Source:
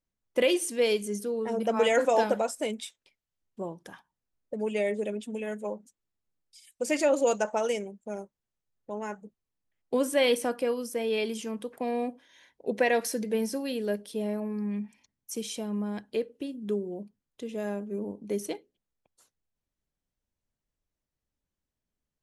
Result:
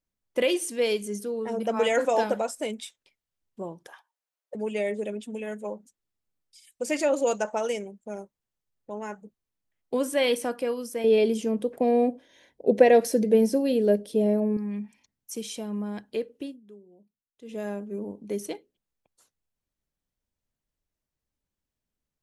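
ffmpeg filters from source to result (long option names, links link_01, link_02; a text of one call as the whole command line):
ffmpeg -i in.wav -filter_complex "[0:a]asettb=1/sr,asplit=3[link_01][link_02][link_03];[link_01]atrim=end=3.874[link_04];[link_02]atrim=start=3.87:end=4.55,asetpts=PTS-STARTPTS,afade=type=in:duration=0.004:curve=qsin,afade=type=out:start_time=0.676:duration=0.004:curve=qsin,highpass=frequency=510:width=0.5412,highpass=frequency=510:width=1.3066[link_05];[link_03]atrim=start=4.546[link_06];[link_04][link_05]acrossfade=duration=0.004:curve1=hsin:curve2=qsin[link_07];[link_07][link_06]acrossfade=duration=0.004:curve1=qsin:curve2=hsin,asettb=1/sr,asplit=3[link_08][link_09][link_10];[link_08]atrim=end=11.044[link_11];[link_09]atrim=start=11.04:end=14.57,asetpts=PTS-STARTPTS,afade=type=in:duration=0.004:curve=qsin,afade=type=out:start_time=3.526:duration=0.004:curve=qsin,lowshelf=frequency=790:width_type=q:width=1.5:gain=7.5[link_12];[link_10]atrim=start=14.566[link_13];[link_11][link_12]acrossfade=duration=0.004:curve1=hsin:curve2=qsin[link_14];[link_14][link_13]acrossfade=duration=0.004:curve1=qsin:curve2=hsin,asplit=3[link_15][link_16][link_17];[link_15]atrim=end=16.66,asetpts=PTS-STARTPTS,afade=type=out:start_time=16.48:duration=0.18:curve=qua:silence=0.112202[link_18];[link_16]atrim=start=16.66:end=17.34,asetpts=PTS-STARTPTS,volume=-19dB[link_19];[link_17]atrim=start=17.34,asetpts=PTS-STARTPTS,afade=type=in:duration=0.18:curve=qua:silence=0.112202[link_20];[link_18][link_19][link_20]concat=n=3:v=0:a=1" out.wav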